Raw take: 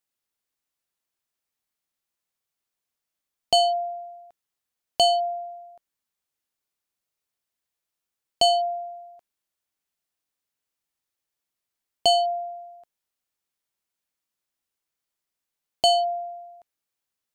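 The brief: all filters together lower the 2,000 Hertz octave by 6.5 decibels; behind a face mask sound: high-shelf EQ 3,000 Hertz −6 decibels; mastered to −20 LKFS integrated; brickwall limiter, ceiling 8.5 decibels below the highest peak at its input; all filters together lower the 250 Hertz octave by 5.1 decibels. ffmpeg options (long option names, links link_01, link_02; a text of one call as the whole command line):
ffmpeg -i in.wav -af "equalizer=frequency=250:width_type=o:gain=-7,equalizer=frequency=2000:width_type=o:gain=-6,alimiter=limit=-20dB:level=0:latency=1,highshelf=frequency=3000:gain=-6,volume=9.5dB" out.wav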